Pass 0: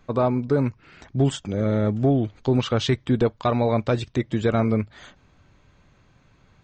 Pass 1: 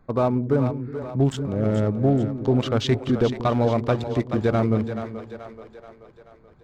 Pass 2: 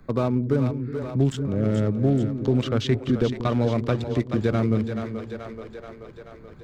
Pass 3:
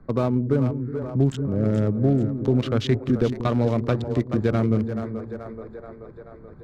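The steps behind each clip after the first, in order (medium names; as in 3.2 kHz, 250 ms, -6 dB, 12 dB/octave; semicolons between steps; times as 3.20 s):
local Wiener filter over 15 samples; two-band feedback delay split 370 Hz, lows 184 ms, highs 431 ms, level -9 dB
peaking EQ 800 Hz -7.5 dB 1.1 oct; three bands compressed up and down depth 40%
local Wiener filter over 15 samples; trim +1 dB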